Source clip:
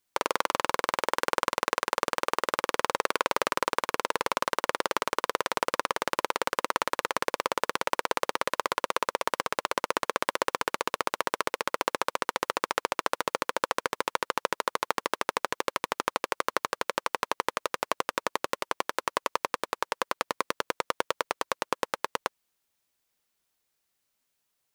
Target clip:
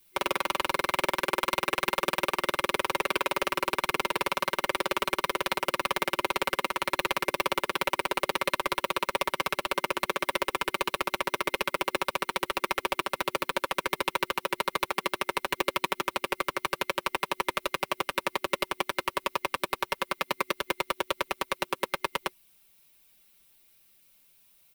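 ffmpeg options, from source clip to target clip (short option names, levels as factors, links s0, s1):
-filter_complex "[0:a]highshelf=f=8600:g=11.5,aeval=exprs='clip(val(0),-1,0.316)':c=same,aecho=1:1:5.2:0.92,acrossover=split=170|1100|2600[s0][s1][s2][s3];[s0]aeval=exprs='0.01*sin(PI/2*2*val(0)/0.01)':c=same[s4];[s4][s1][s2][s3]amix=inputs=4:normalize=0,alimiter=limit=0.0891:level=0:latency=1:release=28,superequalizer=6b=1.78:12b=2:13b=1.58:15b=0.631,volume=2"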